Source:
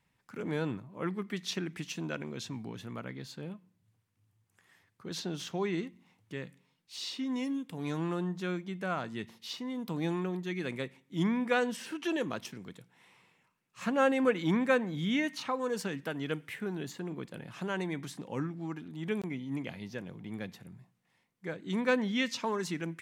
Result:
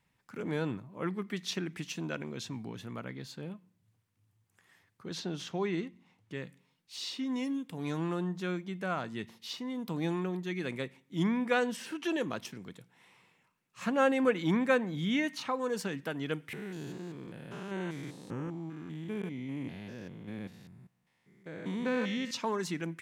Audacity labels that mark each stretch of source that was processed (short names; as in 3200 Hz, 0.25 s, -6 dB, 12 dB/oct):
5.110000	6.350000	high shelf 10000 Hz -11 dB
16.530000	22.310000	stepped spectrum every 0.2 s